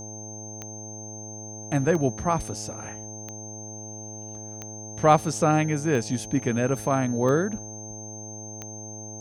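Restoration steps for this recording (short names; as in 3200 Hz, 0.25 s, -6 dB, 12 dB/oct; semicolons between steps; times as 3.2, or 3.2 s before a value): de-click; de-hum 107 Hz, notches 8; notch 6300 Hz, Q 30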